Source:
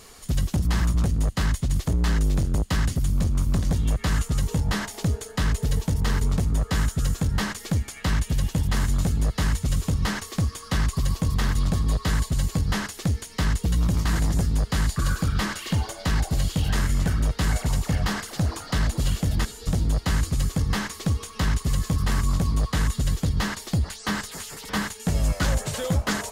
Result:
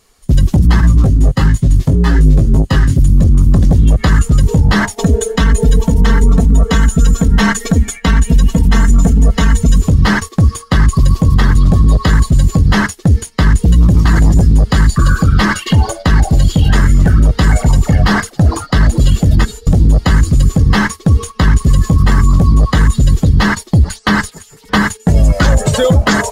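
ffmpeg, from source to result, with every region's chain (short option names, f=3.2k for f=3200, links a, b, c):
-filter_complex "[0:a]asettb=1/sr,asplit=3[a][b][c];[a]atrim=end=0.814[d];[b]atrim=start=0.81:end=2.99,asetpts=PTS-STARTPTS,afade=t=in:d=0.004:c=qsin,afade=t=out:st=2.176:d=0.004:c=qsin,aecho=1:1:7.5:0.34,atrim=end_sample=96138,flanger=delay=18:depth=4:speed=1.2[e];[c]atrim=start=2.986[f];[d][e]acrossfade=d=0.004:c1=hsin:c2=qsin[g];[g][f]acrossfade=d=0.004:c1=qsin:c2=hsin,asettb=1/sr,asplit=3[h][i][j];[h]atrim=end=4.964[k];[i]atrim=start=4.96:end=9.82,asetpts=PTS-STARTPTS,afade=t=in:d=0.004:c=qsin,afade=t=out:st=4.856:d=0.004:c=qsin,bandreject=f=4.7k:w=13,aecho=1:1:4.4:0.83,atrim=end_sample=214326[l];[j]atrim=start=9.816[m];[k][l]acrossfade=d=0.004:c1=hsin:c2=qsin[n];[n][m]acrossfade=d=0.004:c1=qsin:c2=hsin,afftdn=nr=13:nf=-32,agate=range=-13dB:threshold=-39dB:ratio=16:detection=peak,alimiter=level_in=20dB:limit=-1dB:release=50:level=0:latency=1,volume=-1dB"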